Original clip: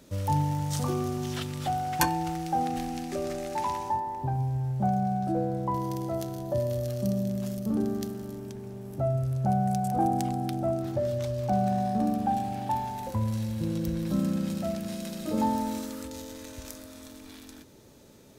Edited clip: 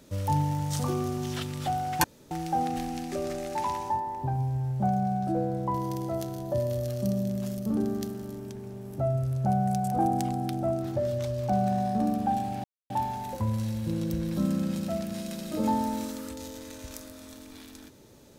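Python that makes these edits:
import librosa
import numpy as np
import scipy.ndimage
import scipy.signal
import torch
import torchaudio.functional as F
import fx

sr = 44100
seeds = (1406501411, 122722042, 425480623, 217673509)

y = fx.edit(x, sr, fx.room_tone_fill(start_s=2.04, length_s=0.27),
    fx.insert_silence(at_s=12.64, length_s=0.26), tone=tone)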